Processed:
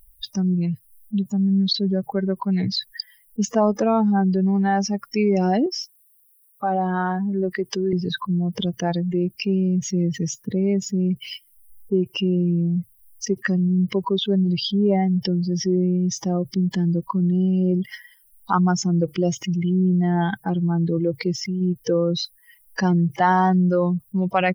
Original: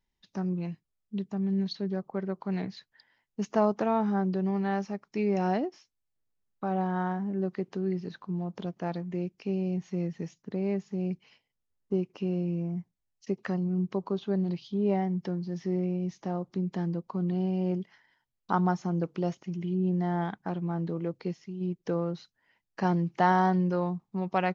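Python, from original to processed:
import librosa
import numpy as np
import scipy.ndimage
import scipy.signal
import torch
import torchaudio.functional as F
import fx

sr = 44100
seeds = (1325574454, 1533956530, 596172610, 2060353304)

y = fx.bin_expand(x, sr, power=2.0)
y = fx.highpass(y, sr, hz=550.0, slope=6, at=(5.66, 7.93))
y = fx.env_flatten(y, sr, amount_pct=70)
y = y * 10.0 ** (7.0 / 20.0)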